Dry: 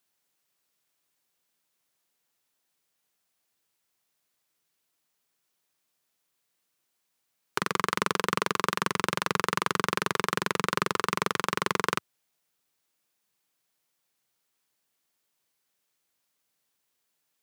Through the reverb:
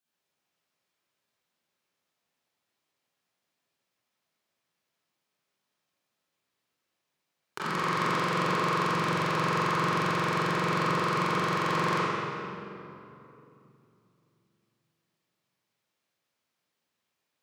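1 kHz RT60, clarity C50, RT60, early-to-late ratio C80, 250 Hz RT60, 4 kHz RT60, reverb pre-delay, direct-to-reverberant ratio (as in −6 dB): 2.7 s, −6.5 dB, 2.9 s, −3.5 dB, 3.7 s, 1.8 s, 23 ms, −11.5 dB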